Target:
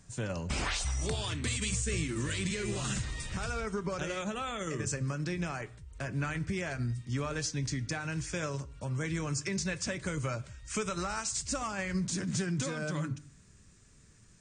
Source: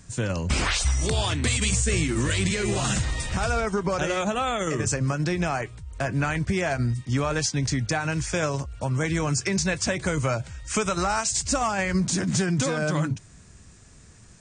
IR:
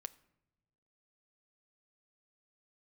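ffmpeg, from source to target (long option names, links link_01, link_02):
-filter_complex "[0:a]asetnsamples=nb_out_samples=441:pad=0,asendcmd='1.16 equalizer g -6.5',equalizer=frequency=750:width=2.1:gain=3[link_01];[1:a]atrim=start_sample=2205,afade=type=out:start_time=0.25:duration=0.01,atrim=end_sample=11466[link_02];[link_01][link_02]afir=irnorm=-1:irlink=0,volume=-4.5dB"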